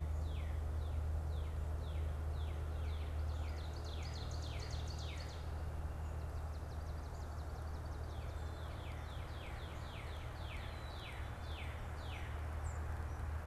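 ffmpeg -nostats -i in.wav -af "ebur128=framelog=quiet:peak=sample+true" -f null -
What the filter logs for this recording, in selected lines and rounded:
Integrated loudness:
  I:         -44.7 LUFS
  Threshold: -54.7 LUFS
Loudness range:
  LRA:         4.5 LU
  Threshold: -65.1 LUFS
  LRA low:   -47.0 LUFS
  LRA high:  -42.5 LUFS
Sample peak:
  Peak:      -30.5 dBFS
True peak:
  Peak:      -30.5 dBFS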